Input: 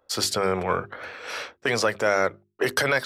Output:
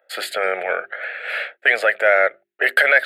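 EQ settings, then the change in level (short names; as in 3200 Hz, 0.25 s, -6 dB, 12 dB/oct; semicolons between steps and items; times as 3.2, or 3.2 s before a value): resonant high-pass 630 Hz, resonance Q 3.5; bell 1700 Hz +14 dB 1.3 oct; fixed phaser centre 2500 Hz, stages 4; 0.0 dB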